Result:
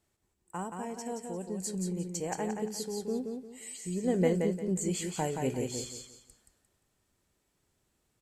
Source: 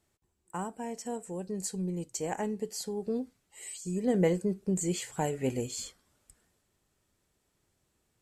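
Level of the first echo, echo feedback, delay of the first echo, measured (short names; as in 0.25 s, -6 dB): -5.0 dB, 29%, 0.175 s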